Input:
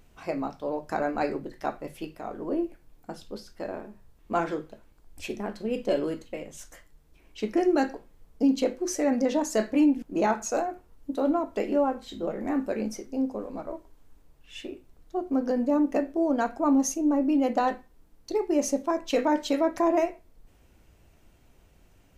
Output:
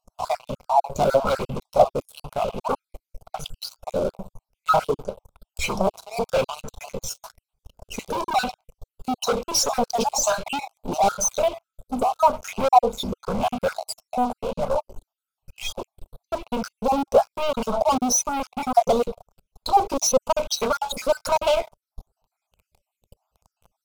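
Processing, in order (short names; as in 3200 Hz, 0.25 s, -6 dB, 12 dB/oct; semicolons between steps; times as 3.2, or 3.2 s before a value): random spectral dropouts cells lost 58%; sample leveller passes 5; varispeed -7%; fixed phaser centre 750 Hz, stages 4; LFO bell 1 Hz 310–2900 Hz +10 dB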